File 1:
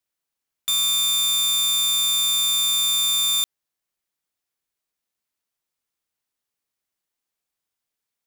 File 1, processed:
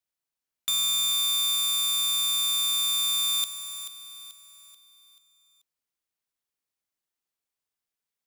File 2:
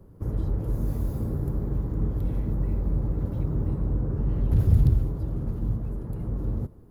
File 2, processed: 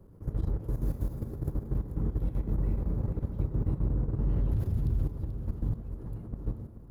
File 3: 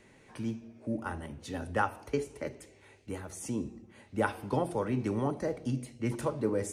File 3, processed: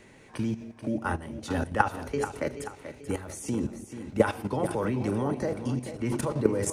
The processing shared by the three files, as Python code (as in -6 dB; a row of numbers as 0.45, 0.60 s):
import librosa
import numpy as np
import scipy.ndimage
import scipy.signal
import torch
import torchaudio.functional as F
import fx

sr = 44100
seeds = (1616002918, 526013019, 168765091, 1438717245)

y = fx.level_steps(x, sr, step_db=13)
y = fx.echo_feedback(y, sr, ms=435, feedback_pct=44, wet_db=-11)
y = y * 10.0 ** (-30 / 20.0) / np.sqrt(np.mean(np.square(y)))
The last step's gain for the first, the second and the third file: +1.0, -1.5, +11.0 dB